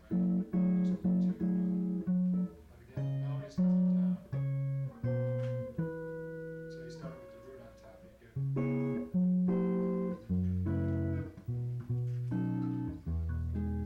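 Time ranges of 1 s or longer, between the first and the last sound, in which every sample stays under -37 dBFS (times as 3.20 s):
7.09–8.37 s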